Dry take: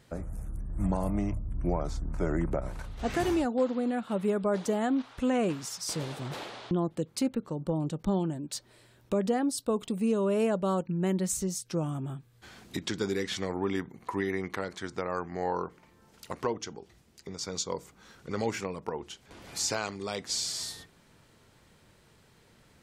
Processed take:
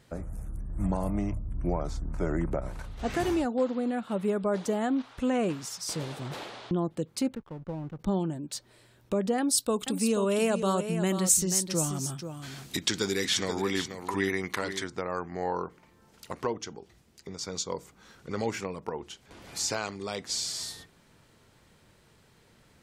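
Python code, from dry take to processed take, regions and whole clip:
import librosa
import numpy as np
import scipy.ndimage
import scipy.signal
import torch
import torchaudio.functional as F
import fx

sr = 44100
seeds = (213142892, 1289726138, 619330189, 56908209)

y = fx.chain(x, sr, fx.lowpass(hz=2300.0, slope=24),
    fx.backlash(play_db=-43.0),
    fx.peak_eq(hz=330.0, db=-7.5, octaves=3.0), at=(7.35, 7.99))
y = fx.chain(y, sr, fx.high_shelf(hz=2100.0, db=11.0),
    fx.echo_single(ms=484, db=-9.0), at=(9.38, 14.84))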